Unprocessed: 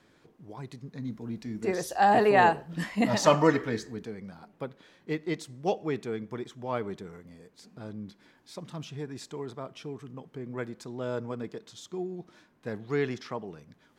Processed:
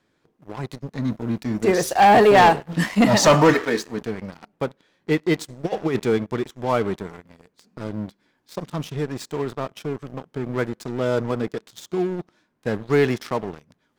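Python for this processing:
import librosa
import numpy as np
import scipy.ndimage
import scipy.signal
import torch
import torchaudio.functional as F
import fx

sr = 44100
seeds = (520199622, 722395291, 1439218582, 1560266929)

y = fx.highpass(x, sr, hz=fx.line((3.53, 460.0), (4.0, 160.0)), slope=12, at=(3.53, 4.0), fade=0.02)
y = fx.over_compress(y, sr, threshold_db=-31.0, ratio=-0.5, at=(5.64, 6.18))
y = fx.leveller(y, sr, passes=3)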